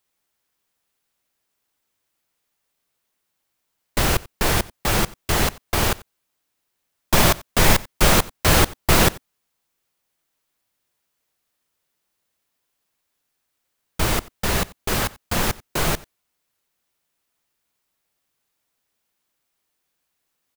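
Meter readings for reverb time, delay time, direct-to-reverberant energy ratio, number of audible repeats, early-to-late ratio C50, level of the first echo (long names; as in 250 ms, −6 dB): no reverb audible, 90 ms, no reverb audible, 1, no reverb audible, −22.0 dB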